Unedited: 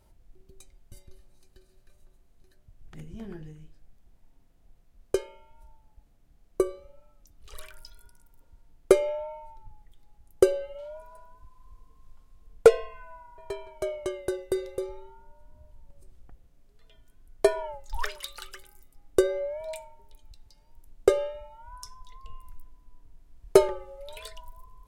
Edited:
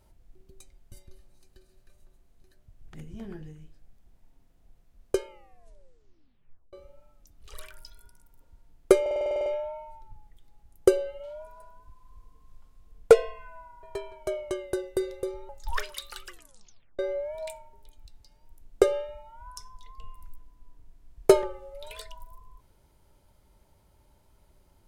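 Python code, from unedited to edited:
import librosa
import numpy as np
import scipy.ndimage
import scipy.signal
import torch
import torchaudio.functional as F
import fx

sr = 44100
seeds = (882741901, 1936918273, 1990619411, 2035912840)

y = fx.edit(x, sr, fx.tape_stop(start_s=5.27, length_s=1.46),
    fx.stutter(start_s=9.01, slice_s=0.05, count=10),
    fx.cut(start_s=15.04, length_s=2.71),
    fx.tape_stop(start_s=18.53, length_s=0.72), tone=tone)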